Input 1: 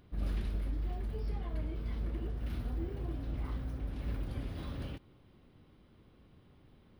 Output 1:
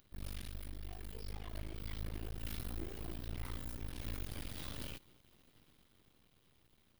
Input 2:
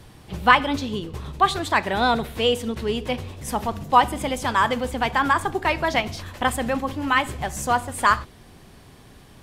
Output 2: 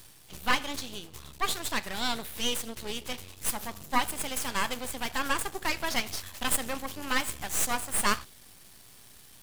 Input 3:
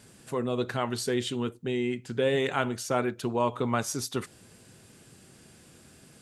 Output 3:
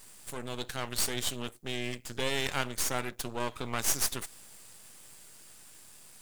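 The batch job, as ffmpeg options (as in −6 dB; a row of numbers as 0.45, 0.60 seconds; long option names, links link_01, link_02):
-af "crystalizer=i=7.5:c=0,aeval=exprs='max(val(0),0)':channel_layout=same,dynaudnorm=framelen=170:gausssize=17:maxgain=5dB,volume=-8dB"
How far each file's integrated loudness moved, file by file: −6.5, −8.5, −3.5 LU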